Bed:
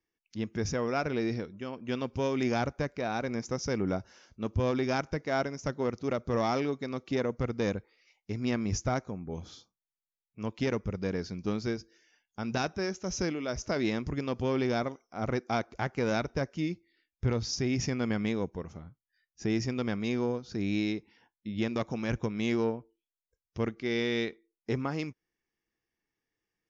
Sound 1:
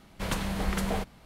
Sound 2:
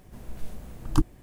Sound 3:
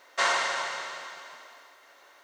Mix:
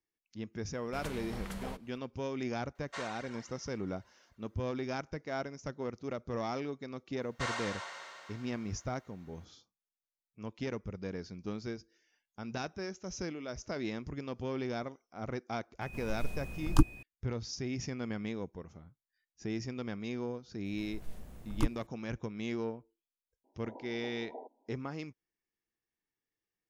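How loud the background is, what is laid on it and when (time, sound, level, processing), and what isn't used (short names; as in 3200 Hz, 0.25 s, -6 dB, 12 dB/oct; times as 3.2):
bed -7.5 dB
0.73 add 1 -12 dB
2.75 add 3 -17 dB + reverb removal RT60 1.3 s
7.22 add 3 -12 dB
15.81 add 2 -1.5 dB + whine 2500 Hz -48 dBFS
20.65 add 2 -8 dB
23.44 add 1 -12 dB + brick-wall FIR band-pass 240–1000 Hz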